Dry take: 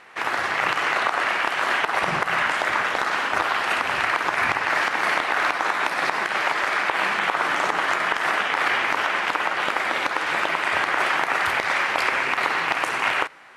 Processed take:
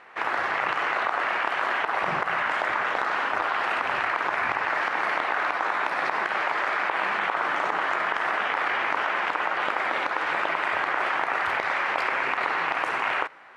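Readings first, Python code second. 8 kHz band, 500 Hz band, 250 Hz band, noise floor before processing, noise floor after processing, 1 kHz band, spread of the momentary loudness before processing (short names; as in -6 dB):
under -10 dB, -2.5 dB, -4.5 dB, -29 dBFS, -31 dBFS, -2.0 dB, 2 LU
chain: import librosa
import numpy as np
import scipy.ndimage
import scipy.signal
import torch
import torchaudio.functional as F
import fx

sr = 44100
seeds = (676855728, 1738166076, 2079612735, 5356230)

p1 = fx.lowpass(x, sr, hz=1100.0, slope=6)
p2 = fx.low_shelf(p1, sr, hz=410.0, db=-10.0)
p3 = fx.over_compress(p2, sr, threshold_db=-30.0, ratio=-1.0)
p4 = p2 + F.gain(torch.from_numpy(p3), -1.0).numpy()
y = F.gain(torch.from_numpy(p4), -2.5).numpy()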